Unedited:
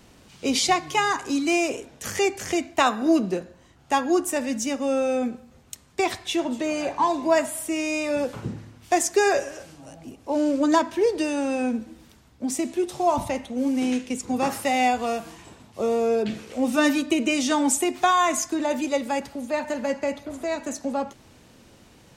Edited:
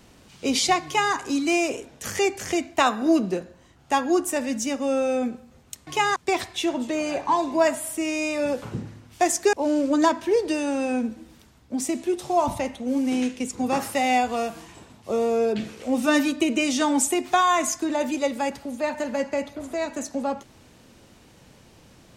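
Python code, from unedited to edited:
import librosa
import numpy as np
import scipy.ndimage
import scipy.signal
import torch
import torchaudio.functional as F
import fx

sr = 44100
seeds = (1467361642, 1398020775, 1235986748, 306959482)

y = fx.edit(x, sr, fx.duplicate(start_s=0.85, length_s=0.29, to_s=5.87),
    fx.cut(start_s=9.24, length_s=0.99), tone=tone)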